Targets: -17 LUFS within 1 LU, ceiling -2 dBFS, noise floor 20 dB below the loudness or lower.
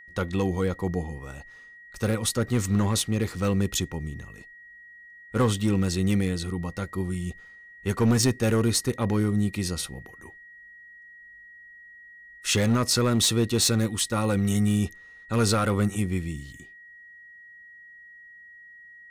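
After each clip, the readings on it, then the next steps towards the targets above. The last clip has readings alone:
clipped 0.6%; flat tops at -15.0 dBFS; steady tone 1900 Hz; tone level -46 dBFS; loudness -25.5 LUFS; peak -15.0 dBFS; loudness target -17.0 LUFS
-> clip repair -15 dBFS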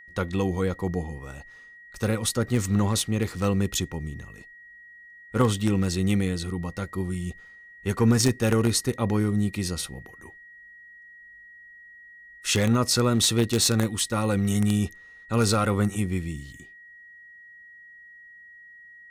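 clipped 0.0%; steady tone 1900 Hz; tone level -46 dBFS
-> notch 1900 Hz, Q 30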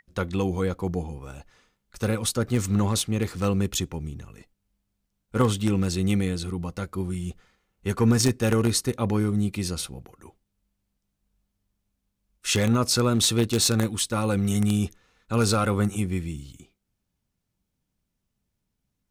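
steady tone none; loudness -25.0 LUFS; peak -6.0 dBFS; loudness target -17.0 LUFS
-> gain +8 dB; limiter -2 dBFS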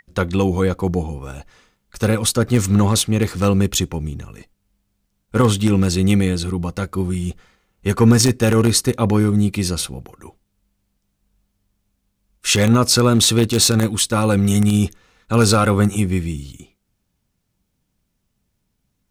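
loudness -17.5 LUFS; peak -2.0 dBFS; noise floor -72 dBFS

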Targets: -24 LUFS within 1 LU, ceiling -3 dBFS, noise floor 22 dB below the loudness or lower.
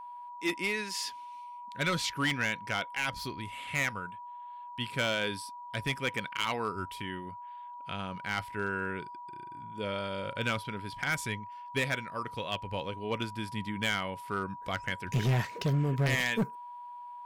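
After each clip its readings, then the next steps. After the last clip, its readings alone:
clipped 1.0%; flat tops at -23.0 dBFS; steady tone 970 Hz; tone level -42 dBFS; loudness -33.0 LUFS; peak -23.0 dBFS; loudness target -24.0 LUFS
-> clip repair -23 dBFS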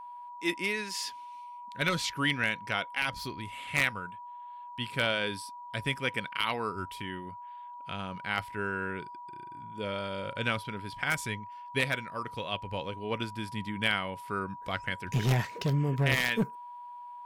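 clipped 0.0%; steady tone 970 Hz; tone level -42 dBFS
-> notch 970 Hz, Q 30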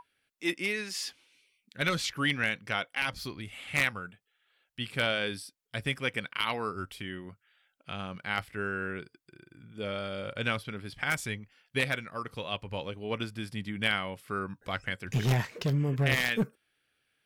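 steady tone none; loudness -32.0 LUFS; peak -13.5 dBFS; loudness target -24.0 LUFS
-> gain +8 dB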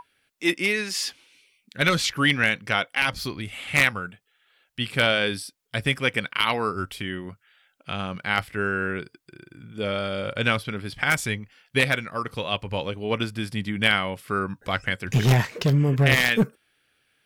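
loudness -24.0 LUFS; peak -5.5 dBFS; noise floor -70 dBFS

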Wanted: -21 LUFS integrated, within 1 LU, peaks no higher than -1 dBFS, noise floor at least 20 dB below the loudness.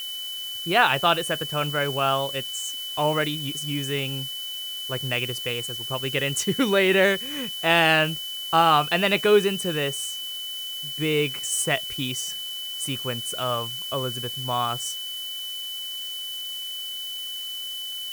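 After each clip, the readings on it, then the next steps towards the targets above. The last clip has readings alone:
steady tone 3000 Hz; tone level -31 dBFS; noise floor -33 dBFS; noise floor target -45 dBFS; loudness -24.5 LUFS; peak -5.0 dBFS; loudness target -21.0 LUFS
-> notch 3000 Hz, Q 30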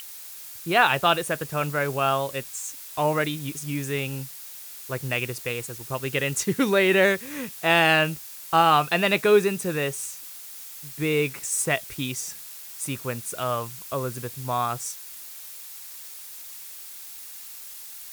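steady tone none; noise floor -41 dBFS; noise floor target -45 dBFS
-> denoiser 6 dB, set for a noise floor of -41 dBFS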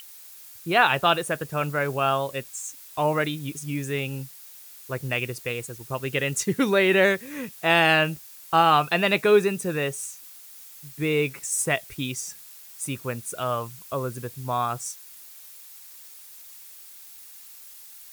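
noise floor -46 dBFS; loudness -24.5 LUFS; peak -5.5 dBFS; loudness target -21.0 LUFS
-> gain +3.5 dB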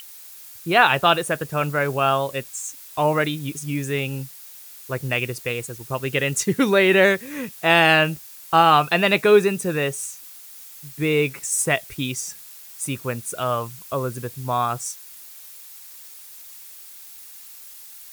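loudness -21.0 LUFS; peak -2.0 dBFS; noise floor -43 dBFS

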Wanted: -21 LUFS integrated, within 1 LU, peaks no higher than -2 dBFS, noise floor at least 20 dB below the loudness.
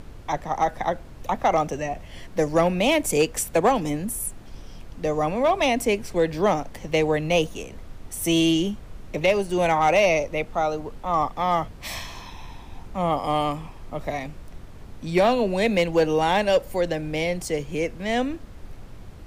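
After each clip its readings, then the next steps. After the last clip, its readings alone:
clipped 0.3%; flat tops at -12.0 dBFS; noise floor -42 dBFS; noise floor target -44 dBFS; loudness -23.5 LUFS; peak -12.0 dBFS; loudness target -21.0 LUFS
-> clip repair -12 dBFS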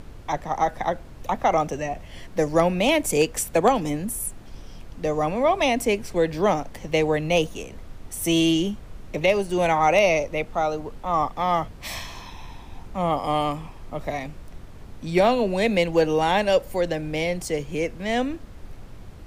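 clipped 0.0%; noise floor -42 dBFS; noise floor target -44 dBFS
-> noise print and reduce 6 dB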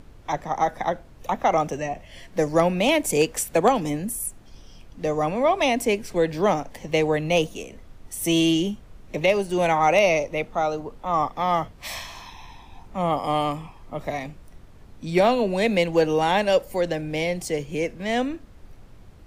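noise floor -48 dBFS; loudness -23.5 LUFS; peak -6.0 dBFS; loudness target -21.0 LUFS
-> gain +2.5 dB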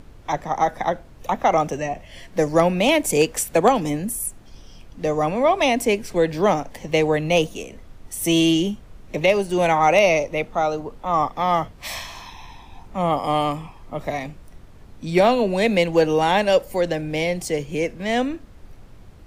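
loudness -21.0 LUFS; peak -3.5 dBFS; noise floor -45 dBFS

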